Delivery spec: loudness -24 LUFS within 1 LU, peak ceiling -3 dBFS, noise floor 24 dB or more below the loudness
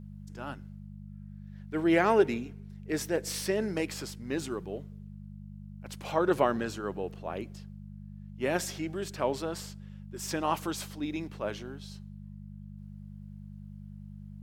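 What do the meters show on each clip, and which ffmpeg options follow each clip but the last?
hum 50 Hz; harmonics up to 200 Hz; hum level -43 dBFS; loudness -32.0 LUFS; peak -11.5 dBFS; loudness target -24.0 LUFS
-> -af "bandreject=f=50:t=h:w=4,bandreject=f=100:t=h:w=4,bandreject=f=150:t=h:w=4,bandreject=f=200:t=h:w=4"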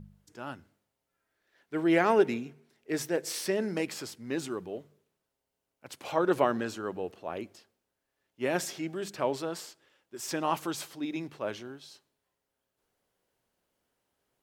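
hum none; loudness -31.5 LUFS; peak -11.5 dBFS; loudness target -24.0 LUFS
-> -af "volume=7.5dB"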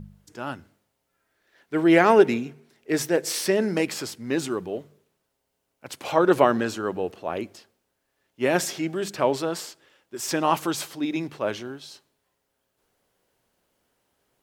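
loudness -24.0 LUFS; peak -4.0 dBFS; noise floor -77 dBFS

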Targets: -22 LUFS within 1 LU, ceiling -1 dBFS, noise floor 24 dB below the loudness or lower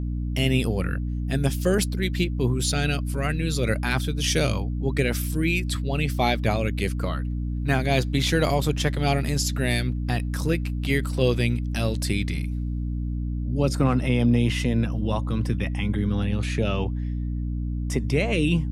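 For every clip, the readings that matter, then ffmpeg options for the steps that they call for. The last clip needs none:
hum 60 Hz; harmonics up to 300 Hz; hum level -25 dBFS; loudness -25.0 LUFS; peak -7.0 dBFS; loudness target -22.0 LUFS
-> -af "bandreject=f=60:t=h:w=4,bandreject=f=120:t=h:w=4,bandreject=f=180:t=h:w=4,bandreject=f=240:t=h:w=4,bandreject=f=300:t=h:w=4"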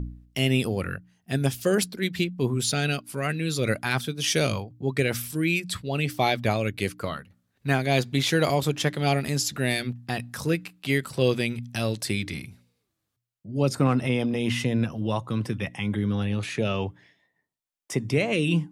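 hum none; loudness -26.5 LUFS; peak -8.5 dBFS; loudness target -22.0 LUFS
-> -af "volume=4.5dB"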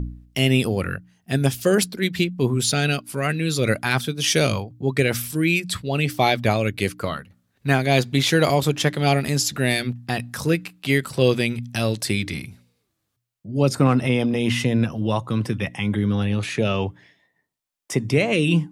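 loudness -22.0 LUFS; peak -4.0 dBFS; noise floor -75 dBFS

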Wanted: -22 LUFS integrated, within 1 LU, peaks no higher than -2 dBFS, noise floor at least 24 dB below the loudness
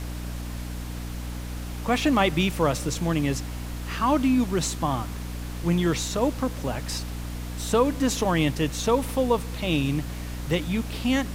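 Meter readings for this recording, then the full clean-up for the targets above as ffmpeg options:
hum 60 Hz; harmonics up to 300 Hz; hum level -31 dBFS; noise floor -34 dBFS; noise floor target -50 dBFS; loudness -26.0 LUFS; peak -7.5 dBFS; loudness target -22.0 LUFS
-> -af "bandreject=f=60:t=h:w=6,bandreject=f=120:t=h:w=6,bandreject=f=180:t=h:w=6,bandreject=f=240:t=h:w=6,bandreject=f=300:t=h:w=6"
-af "afftdn=nr=16:nf=-34"
-af "volume=4dB"

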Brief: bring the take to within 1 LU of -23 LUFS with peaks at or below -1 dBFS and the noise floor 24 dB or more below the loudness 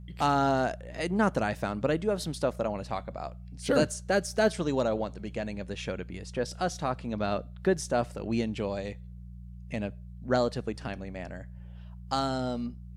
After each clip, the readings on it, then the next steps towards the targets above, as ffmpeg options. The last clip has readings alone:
hum 60 Hz; harmonics up to 180 Hz; hum level -41 dBFS; loudness -30.5 LUFS; peak -12.0 dBFS; loudness target -23.0 LUFS
-> -af "bandreject=f=60:t=h:w=4,bandreject=f=120:t=h:w=4,bandreject=f=180:t=h:w=4"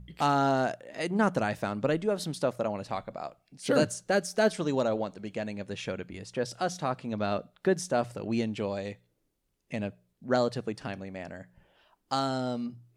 hum none; loudness -30.5 LUFS; peak -12.0 dBFS; loudness target -23.0 LUFS
-> -af "volume=7.5dB"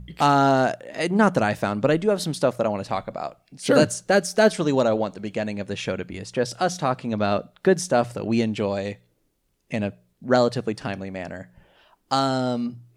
loudness -23.0 LUFS; peak -4.5 dBFS; noise floor -69 dBFS

